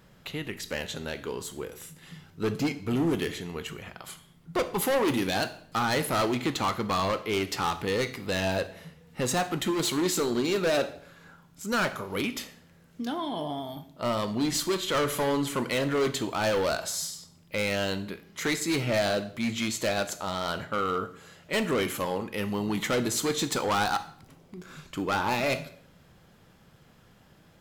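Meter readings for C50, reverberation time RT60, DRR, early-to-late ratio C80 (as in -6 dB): 14.5 dB, 0.60 s, 10.5 dB, 17.5 dB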